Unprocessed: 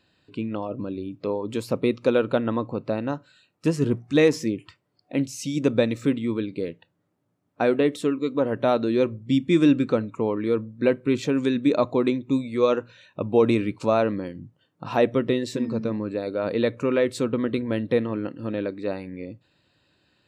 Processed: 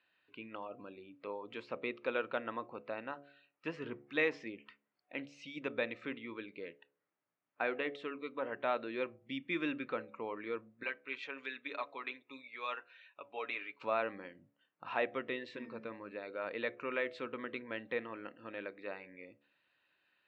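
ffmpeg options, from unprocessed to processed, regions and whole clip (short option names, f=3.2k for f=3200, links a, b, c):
-filter_complex "[0:a]asettb=1/sr,asplit=3[a][b][c];[a]atrim=end=10.834[d];[b]atrim=start=10.83:end=13.8,asetpts=PTS-STARTPTS,afade=t=in:d=0.004:c=qsin,afade=t=out:st=2.966:d=0.004:c=qsin,highpass=f=1.3k:p=1,aecho=1:1:7.1:0.54,atrim=end_sample=130977[e];[c]atrim=start=13.796[f];[d][e]acrossfade=d=0.004:c1=hsin:c2=qsin[g];[g][f]acrossfade=d=0.004:c1=qsin:c2=hsin,lowpass=f=2.4k:w=0.5412,lowpass=f=2.4k:w=1.3066,aderivative,bandreject=f=71.03:t=h:w=4,bandreject=f=142.06:t=h:w=4,bandreject=f=213.09:t=h:w=4,bandreject=f=284.12:t=h:w=4,bandreject=f=355.15:t=h:w=4,bandreject=f=426.18:t=h:w=4,bandreject=f=497.21:t=h:w=4,bandreject=f=568.24:t=h:w=4,bandreject=f=639.27:t=h:w=4,bandreject=f=710.3:t=h:w=4,bandreject=f=781.33:t=h:w=4,volume=7.5dB"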